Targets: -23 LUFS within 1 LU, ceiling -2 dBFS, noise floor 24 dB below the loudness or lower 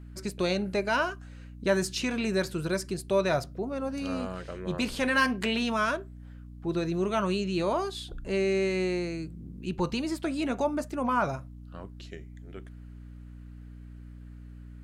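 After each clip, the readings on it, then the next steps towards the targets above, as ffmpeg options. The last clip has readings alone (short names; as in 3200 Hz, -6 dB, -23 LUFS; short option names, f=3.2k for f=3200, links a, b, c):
hum 60 Hz; harmonics up to 300 Hz; hum level -43 dBFS; loudness -29.5 LUFS; peak -13.0 dBFS; loudness target -23.0 LUFS
-> -af "bandreject=f=60:t=h:w=4,bandreject=f=120:t=h:w=4,bandreject=f=180:t=h:w=4,bandreject=f=240:t=h:w=4,bandreject=f=300:t=h:w=4"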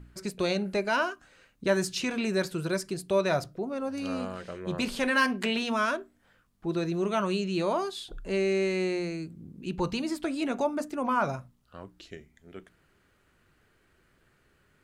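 hum none; loudness -29.5 LUFS; peak -13.0 dBFS; loudness target -23.0 LUFS
-> -af "volume=6.5dB"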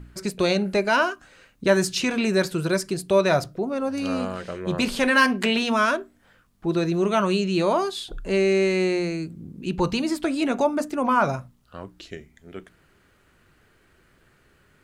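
loudness -23.0 LUFS; peak -6.5 dBFS; noise floor -61 dBFS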